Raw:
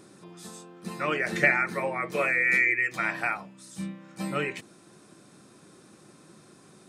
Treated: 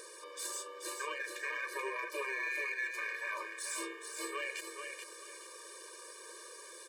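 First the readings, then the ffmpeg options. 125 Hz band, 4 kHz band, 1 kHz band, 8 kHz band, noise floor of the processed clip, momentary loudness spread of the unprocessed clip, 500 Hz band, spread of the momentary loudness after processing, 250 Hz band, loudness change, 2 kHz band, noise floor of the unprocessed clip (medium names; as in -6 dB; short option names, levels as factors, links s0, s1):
under -40 dB, -2.0 dB, -10.0 dB, +5.0 dB, -52 dBFS, 22 LU, -11.0 dB, 13 LU, -16.5 dB, -13.5 dB, -11.5 dB, -55 dBFS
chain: -filter_complex "[0:a]highpass=f=1400:p=1,equalizer=f=3500:w=1.1:g=-4,areverse,acompressor=threshold=0.00794:ratio=6,areverse,alimiter=level_in=5.62:limit=0.0631:level=0:latency=1:release=110,volume=0.178,acompressor=mode=upward:threshold=0.00126:ratio=2.5,aeval=exprs='0.0119*(cos(1*acos(clip(val(0)/0.0119,-1,1)))-cos(1*PI/2))+0.00075*(cos(3*acos(clip(val(0)/0.0119,-1,1)))-cos(3*PI/2))+0.00075*(cos(4*acos(clip(val(0)/0.0119,-1,1)))-cos(4*PI/2))+0.000376*(cos(6*acos(clip(val(0)/0.0119,-1,1)))-cos(6*PI/2))+0.000335*(cos(8*acos(clip(val(0)/0.0119,-1,1)))-cos(8*PI/2))':c=same,aeval=exprs='val(0)*sin(2*PI*140*n/s)':c=same,asplit=2[s0][s1];[s1]aecho=0:1:432|864|1296|1728:0.501|0.14|0.0393|0.011[s2];[s0][s2]amix=inputs=2:normalize=0,afftfilt=real='re*eq(mod(floor(b*sr/1024/310),2),1)':imag='im*eq(mod(floor(b*sr/1024/310),2),1)':win_size=1024:overlap=0.75,volume=7.08"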